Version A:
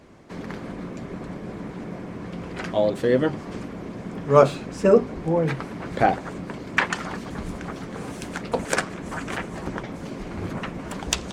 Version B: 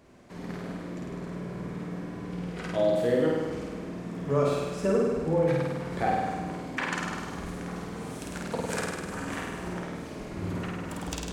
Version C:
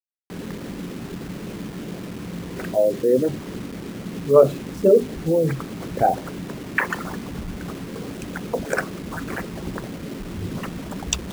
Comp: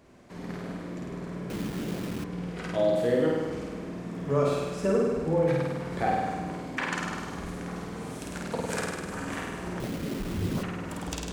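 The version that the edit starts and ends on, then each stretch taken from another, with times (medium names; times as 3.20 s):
B
1.50–2.24 s: from C
9.80–10.63 s: from C
not used: A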